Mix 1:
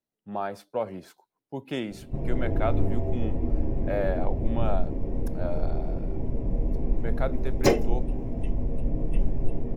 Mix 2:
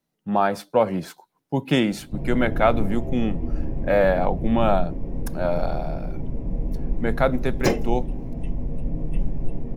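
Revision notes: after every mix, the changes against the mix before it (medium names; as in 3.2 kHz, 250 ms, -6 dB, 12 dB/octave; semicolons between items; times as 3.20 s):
speech +12.0 dB; master: add graphic EQ with 31 bands 100 Hz -5 dB, 160 Hz +7 dB, 400 Hz -4 dB, 630 Hz -3 dB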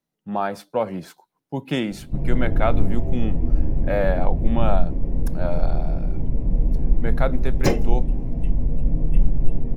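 speech -4.0 dB; background: add bass shelf 130 Hz +8 dB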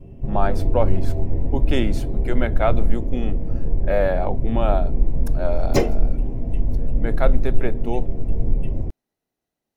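background: entry -1.90 s; master: add graphic EQ with 31 bands 100 Hz +5 dB, 160 Hz -7 dB, 400 Hz +4 dB, 630 Hz +3 dB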